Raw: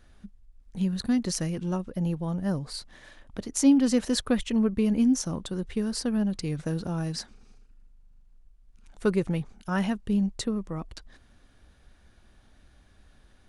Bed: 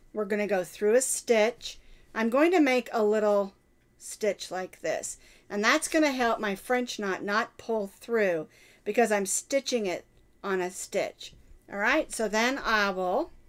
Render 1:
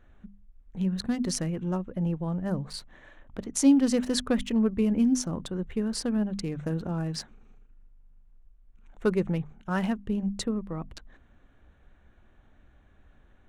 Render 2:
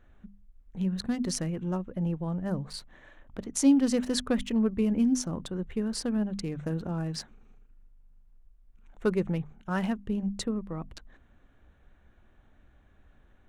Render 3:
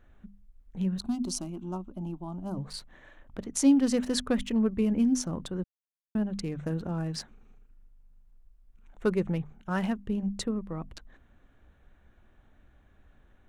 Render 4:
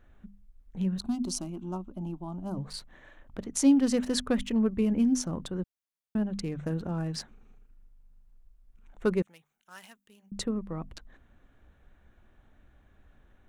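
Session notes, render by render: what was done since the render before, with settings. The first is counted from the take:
local Wiener filter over 9 samples; hum notches 50/100/150/200/250 Hz
trim -1.5 dB
0.98–2.57 s: static phaser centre 490 Hz, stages 6; 5.64–6.15 s: mute
9.22–10.32 s: differentiator

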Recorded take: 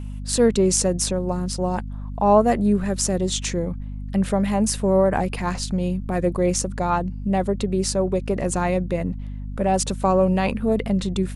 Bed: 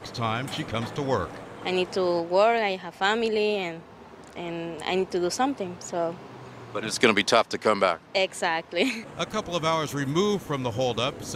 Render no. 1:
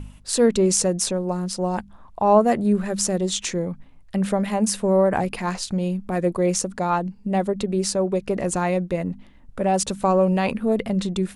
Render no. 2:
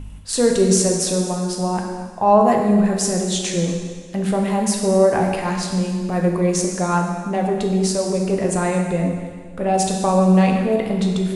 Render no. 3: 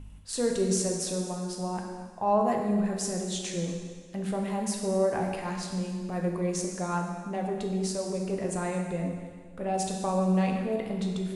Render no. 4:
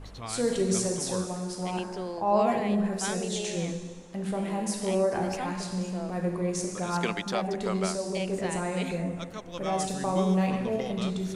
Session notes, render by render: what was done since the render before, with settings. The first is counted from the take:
de-hum 50 Hz, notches 5
plate-style reverb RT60 1.7 s, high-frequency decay 0.95×, DRR 0.5 dB
trim -11 dB
add bed -12 dB

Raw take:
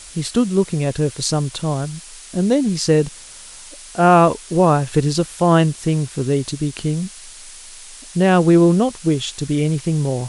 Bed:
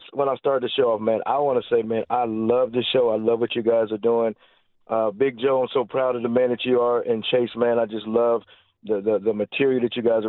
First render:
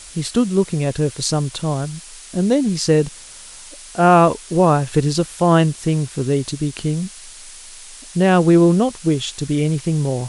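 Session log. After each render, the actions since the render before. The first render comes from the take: no audible change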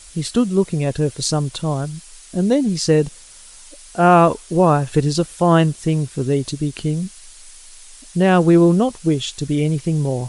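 noise reduction 6 dB, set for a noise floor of -39 dBFS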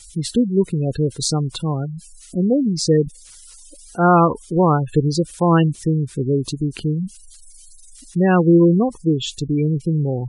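spectral gate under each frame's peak -20 dB strong; peaking EQ 630 Hz -12 dB 0.21 oct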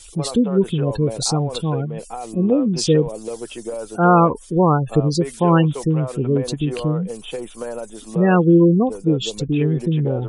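add bed -9 dB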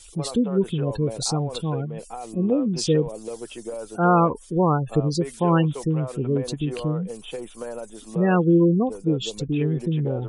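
trim -4.5 dB

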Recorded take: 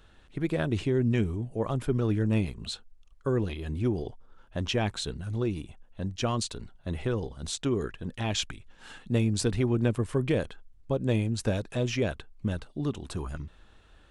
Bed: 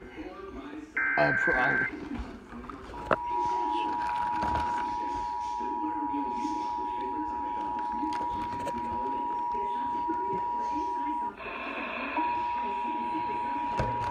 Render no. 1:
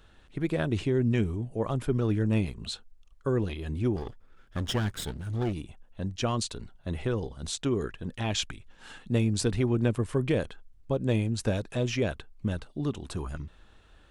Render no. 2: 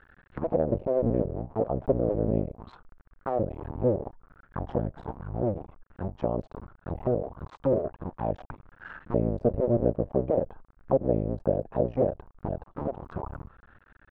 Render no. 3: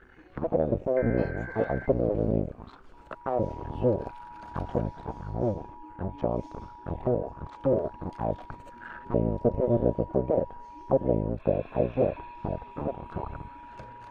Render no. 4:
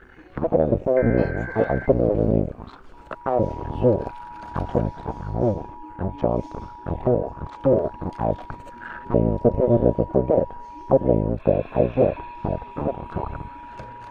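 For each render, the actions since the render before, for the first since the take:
3.96–5.53 s: comb filter that takes the minimum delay 0.6 ms
cycle switcher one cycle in 2, muted; touch-sensitive low-pass 570–1700 Hz down, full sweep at -27 dBFS
add bed -15 dB
trim +6.5 dB

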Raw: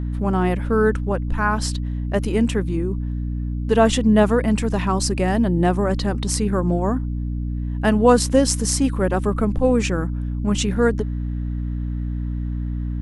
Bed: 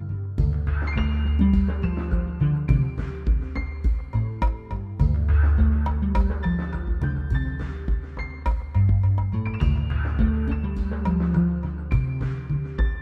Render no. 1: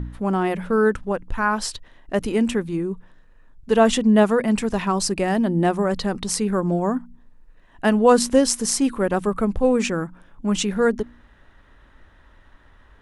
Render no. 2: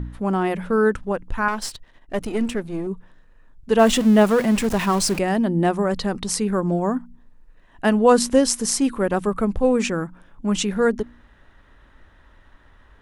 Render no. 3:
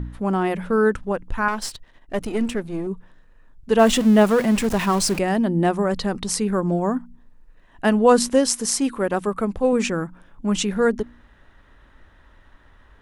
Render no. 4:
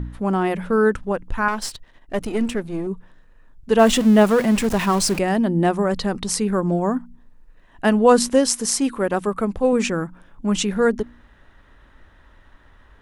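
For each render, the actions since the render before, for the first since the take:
de-hum 60 Hz, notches 5
1.48–2.87 s: partial rectifier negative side -7 dB; 3.79–5.19 s: jump at every zero crossing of -26 dBFS
8.28–9.73 s: bass shelf 140 Hz -9 dB
trim +1 dB

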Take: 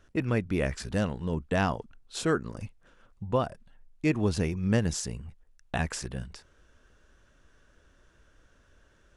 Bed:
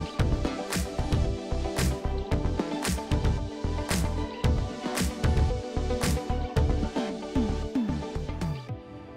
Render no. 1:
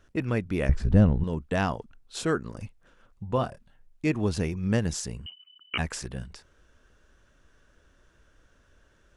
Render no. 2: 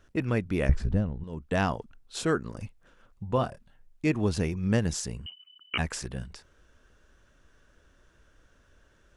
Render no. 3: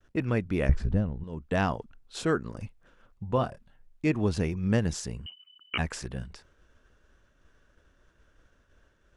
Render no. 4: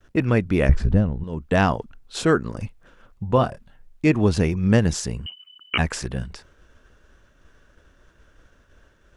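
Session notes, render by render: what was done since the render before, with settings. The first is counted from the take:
0.69–1.24 s: tilt EQ -4 dB/octave; 3.35–4.07 s: doubling 24 ms -7 dB; 5.26–5.78 s: frequency inversion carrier 3 kHz
0.76–1.55 s: dip -11 dB, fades 0.27 s
expander -57 dBFS; treble shelf 5.5 kHz -6 dB
trim +8 dB; peak limiter -2 dBFS, peak gain reduction 2 dB

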